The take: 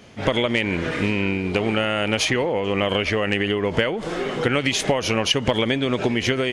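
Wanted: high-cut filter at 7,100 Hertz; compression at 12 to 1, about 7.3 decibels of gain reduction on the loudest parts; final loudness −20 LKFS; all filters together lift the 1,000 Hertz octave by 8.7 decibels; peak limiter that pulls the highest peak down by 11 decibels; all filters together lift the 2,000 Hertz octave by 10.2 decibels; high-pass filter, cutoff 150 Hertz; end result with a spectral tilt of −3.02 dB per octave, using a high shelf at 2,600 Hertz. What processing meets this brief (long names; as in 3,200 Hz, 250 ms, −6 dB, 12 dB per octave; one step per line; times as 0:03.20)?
high-pass filter 150 Hz
low-pass filter 7,100 Hz
parametric band 1,000 Hz +8 dB
parametric band 2,000 Hz +7.5 dB
high-shelf EQ 2,600 Hz +6 dB
downward compressor 12 to 1, threshold −16 dBFS
level +3.5 dB
brickwall limiter −9 dBFS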